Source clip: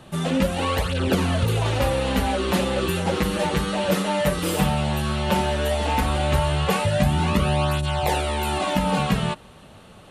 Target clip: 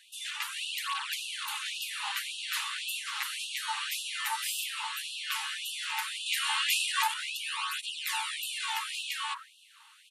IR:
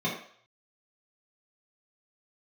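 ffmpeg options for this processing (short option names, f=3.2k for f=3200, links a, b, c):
-filter_complex "[0:a]asettb=1/sr,asplit=3[a][b][c];[a]atrim=end=6.264[d];[b]atrim=start=6.26:end=7.14,asetpts=PTS-STARTPTS,afade=t=in:d=0.004:c=qsin,afade=t=out:st=0.876:d=0.004:c=qsin,acontrast=54[e];[c]atrim=start=7.136[f];[d][e]acrossfade=d=0.004:c1=hsin:c2=qsin[g];[g][f]acrossfade=d=0.004:c1=qsin:c2=hsin,acrossover=split=290|1200[h][i][j];[h]adelay=50[k];[i]adelay=230[l];[k][l][j]amix=inputs=3:normalize=0,alimiter=level_in=5.5dB:limit=-1dB:release=50:level=0:latency=1,afftfilt=real='re*gte(b*sr/1024,790*pow(2600/790,0.5+0.5*sin(2*PI*1.8*pts/sr)))':imag='im*gte(b*sr/1024,790*pow(2600/790,0.5+0.5*sin(2*PI*1.8*pts/sr)))':win_size=1024:overlap=0.75,volume=-8dB"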